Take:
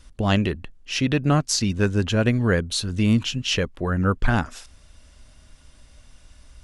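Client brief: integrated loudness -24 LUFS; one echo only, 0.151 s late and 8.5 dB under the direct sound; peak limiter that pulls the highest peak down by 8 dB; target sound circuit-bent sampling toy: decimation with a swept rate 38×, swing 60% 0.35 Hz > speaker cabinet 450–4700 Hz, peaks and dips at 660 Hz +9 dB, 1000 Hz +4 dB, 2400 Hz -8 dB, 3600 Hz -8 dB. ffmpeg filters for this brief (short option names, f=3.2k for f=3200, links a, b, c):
-af "alimiter=limit=-13.5dB:level=0:latency=1,aecho=1:1:151:0.376,acrusher=samples=38:mix=1:aa=0.000001:lfo=1:lforange=22.8:lforate=0.35,highpass=450,equalizer=f=660:t=q:w=4:g=9,equalizer=f=1k:t=q:w=4:g=4,equalizer=f=2.4k:t=q:w=4:g=-8,equalizer=f=3.6k:t=q:w=4:g=-8,lowpass=f=4.7k:w=0.5412,lowpass=f=4.7k:w=1.3066,volume=4.5dB"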